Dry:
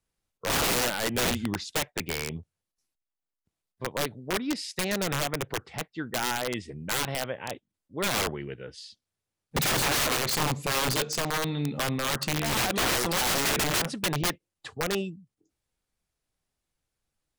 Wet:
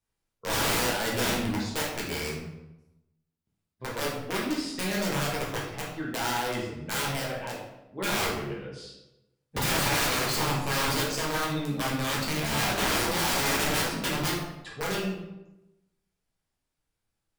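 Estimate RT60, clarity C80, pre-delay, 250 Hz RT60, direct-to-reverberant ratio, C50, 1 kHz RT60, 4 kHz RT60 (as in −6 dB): 0.95 s, 5.5 dB, 7 ms, 1.0 s, −5.0 dB, 2.0 dB, 0.90 s, 0.65 s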